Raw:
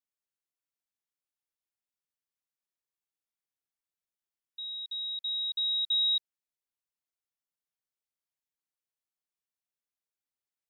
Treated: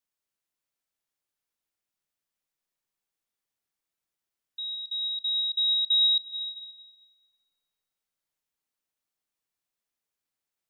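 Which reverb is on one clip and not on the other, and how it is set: digital reverb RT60 3.8 s, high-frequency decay 0.4×, pre-delay 0.1 s, DRR 5 dB; gain +4.5 dB

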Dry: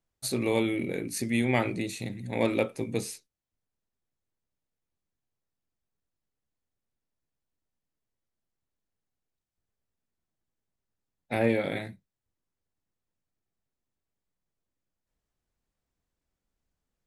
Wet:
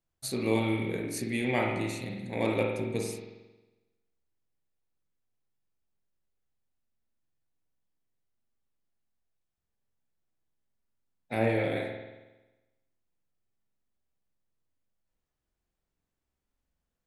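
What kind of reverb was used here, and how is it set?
spring tank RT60 1.1 s, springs 45 ms, chirp 30 ms, DRR 0.5 dB; gain -3.5 dB

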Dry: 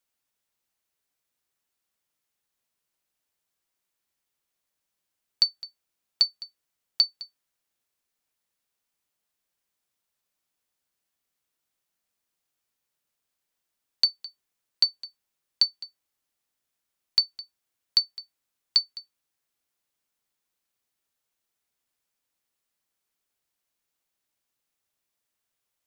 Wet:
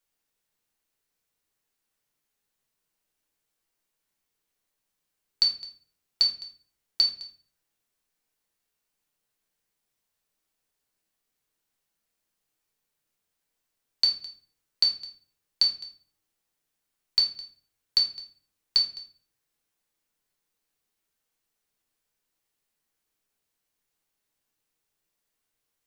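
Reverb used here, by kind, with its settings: shoebox room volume 41 m³, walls mixed, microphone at 0.6 m; gain -1.5 dB

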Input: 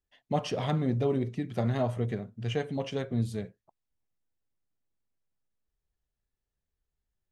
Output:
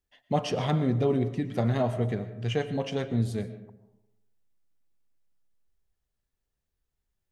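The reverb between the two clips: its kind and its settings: digital reverb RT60 0.93 s, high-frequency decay 0.4×, pre-delay 75 ms, DRR 12.5 dB; gain +2.5 dB

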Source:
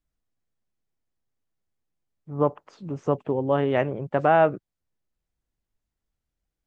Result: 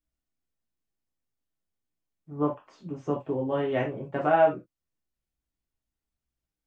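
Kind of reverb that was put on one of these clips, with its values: non-linear reverb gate 0.1 s falling, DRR -2.5 dB; gain -8.5 dB

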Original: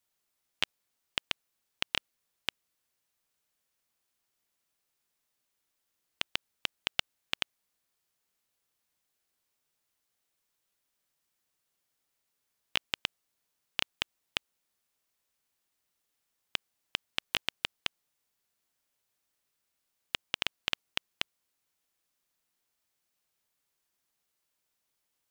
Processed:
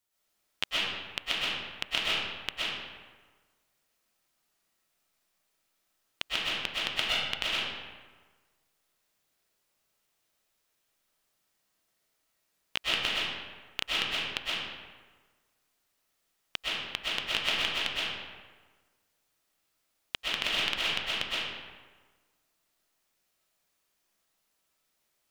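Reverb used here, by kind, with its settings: digital reverb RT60 1.4 s, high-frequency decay 0.65×, pre-delay 85 ms, DRR -8 dB; gain -2 dB

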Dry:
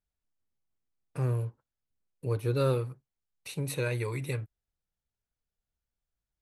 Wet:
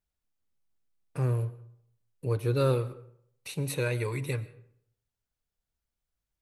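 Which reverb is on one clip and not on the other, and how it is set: digital reverb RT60 0.68 s, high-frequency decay 0.6×, pre-delay 75 ms, DRR 17.5 dB; gain +1.5 dB

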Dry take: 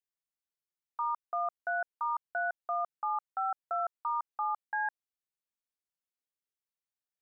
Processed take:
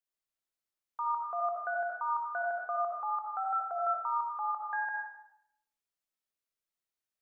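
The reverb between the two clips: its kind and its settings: digital reverb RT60 0.77 s, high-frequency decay 0.85×, pre-delay 30 ms, DRR -1.5 dB; gain -2 dB

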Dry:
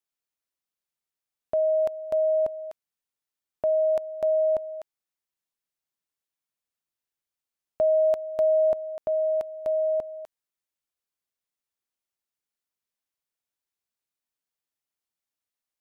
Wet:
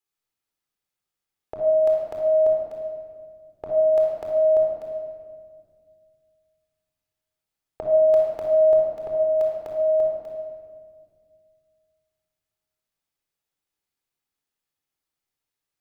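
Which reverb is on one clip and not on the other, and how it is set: shoebox room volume 2900 m³, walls mixed, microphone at 4 m; gain -1.5 dB

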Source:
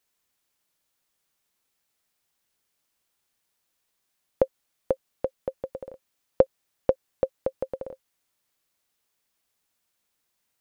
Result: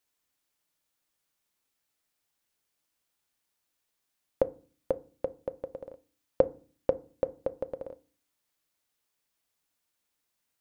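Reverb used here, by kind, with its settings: FDN reverb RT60 0.39 s, low-frequency decay 1.55×, high-frequency decay 0.5×, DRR 13.5 dB; gain -4 dB

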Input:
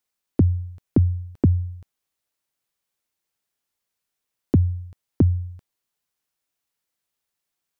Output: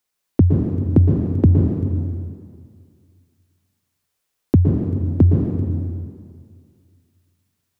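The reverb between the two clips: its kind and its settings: plate-style reverb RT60 2.1 s, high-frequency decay 0.85×, pre-delay 0.105 s, DRR -0.5 dB; gain +3.5 dB

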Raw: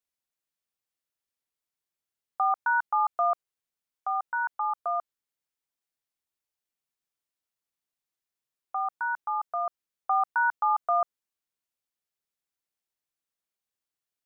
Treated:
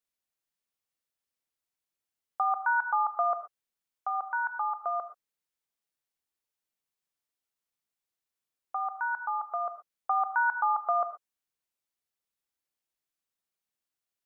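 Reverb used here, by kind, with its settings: non-linear reverb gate 0.15 s flat, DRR 8.5 dB; gain -1 dB

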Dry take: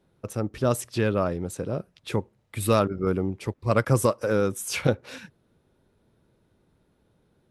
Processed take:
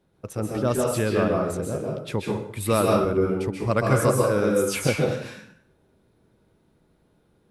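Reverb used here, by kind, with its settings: plate-style reverb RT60 0.64 s, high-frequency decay 0.8×, pre-delay 0.12 s, DRR -1.5 dB; gain -1 dB

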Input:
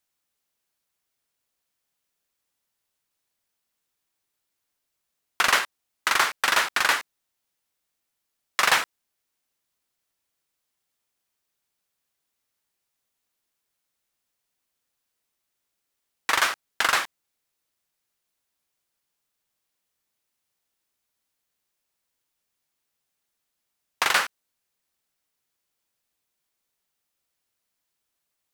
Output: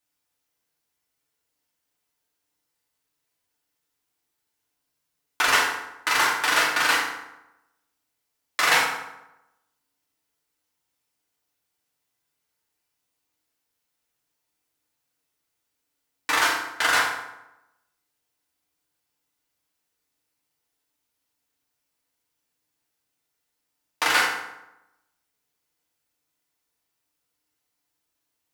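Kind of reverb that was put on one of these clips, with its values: FDN reverb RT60 0.92 s, low-frequency decay 1.05×, high-frequency decay 0.65×, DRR -4.5 dB; gain -4 dB

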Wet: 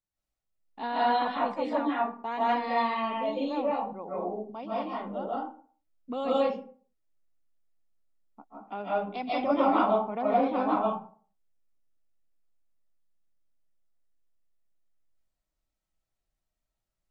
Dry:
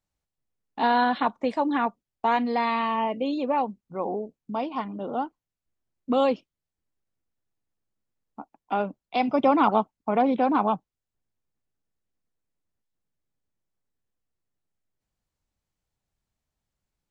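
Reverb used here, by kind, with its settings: digital reverb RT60 0.45 s, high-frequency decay 0.55×, pre-delay 0.115 s, DRR -8 dB; gain -11.5 dB

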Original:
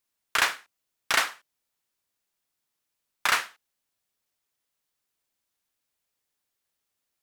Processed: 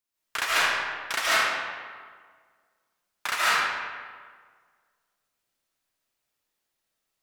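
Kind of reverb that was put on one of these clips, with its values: digital reverb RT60 1.7 s, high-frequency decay 0.65×, pre-delay 0.1 s, DRR -9.5 dB; gain -6.5 dB

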